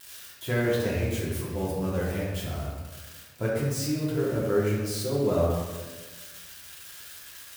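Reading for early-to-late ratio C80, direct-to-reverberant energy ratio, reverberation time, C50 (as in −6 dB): 2.0 dB, −6.5 dB, 1.3 s, 0.0 dB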